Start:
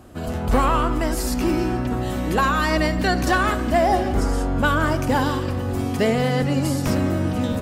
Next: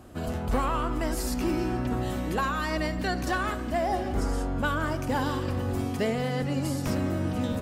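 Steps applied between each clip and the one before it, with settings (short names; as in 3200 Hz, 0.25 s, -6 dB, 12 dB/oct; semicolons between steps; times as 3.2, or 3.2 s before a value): vocal rider within 5 dB 0.5 s; gain -7.5 dB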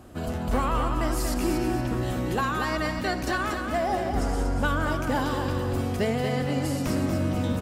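feedback echo 0.236 s, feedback 39%, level -6 dB; gain +1 dB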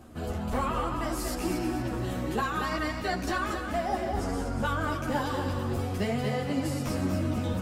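reverse; upward compressor, threshold -33 dBFS; reverse; ensemble effect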